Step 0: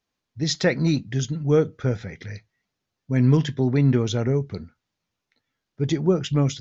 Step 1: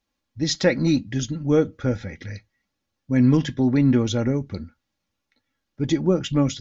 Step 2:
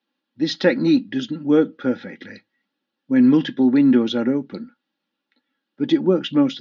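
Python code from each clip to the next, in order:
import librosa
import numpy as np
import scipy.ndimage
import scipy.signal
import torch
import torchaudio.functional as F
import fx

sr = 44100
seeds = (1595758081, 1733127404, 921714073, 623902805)

y1 = fx.low_shelf(x, sr, hz=160.0, db=5.0)
y1 = y1 + 0.5 * np.pad(y1, (int(3.6 * sr / 1000.0), 0))[:len(y1)]
y2 = fx.cabinet(y1, sr, low_hz=220.0, low_slope=24, high_hz=3800.0, hz=(440.0, 660.0, 1100.0, 2200.0), db=(-4, -9, -6, -8))
y2 = y2 * librosa.db_to_amplitude(6.0)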